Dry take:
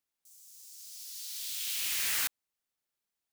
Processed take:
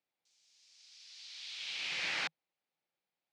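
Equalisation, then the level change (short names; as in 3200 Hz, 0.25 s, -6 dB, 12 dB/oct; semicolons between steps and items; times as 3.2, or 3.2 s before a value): speaker cabinet 120–4700 Hz, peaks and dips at 160 Hz +9 dB, 330 Hz +5 dB, 530 Hz +8 dB, 790 Hz +8 dB, 2300 Hz +5 dB; -1.5 dB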